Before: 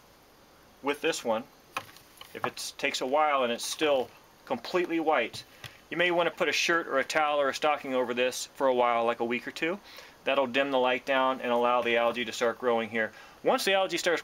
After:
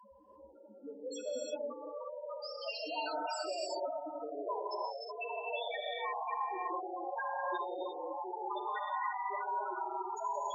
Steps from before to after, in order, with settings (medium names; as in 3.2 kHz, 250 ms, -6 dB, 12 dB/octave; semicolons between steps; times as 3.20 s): gliding tape speed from 97% -> 173%; bass shelf 180 Hz -3.5 dB; on a send: echo that smears into a reverb 704 ms, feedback 49%, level -8.5 dB; on the sum: loudest bins only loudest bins 1; rippled EQ curve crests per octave 1.3, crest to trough 13 dB; gated-style reverb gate 370 ms rising, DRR -2.5 dB; spectrum-flattening compressor 2:1; trim -5 dB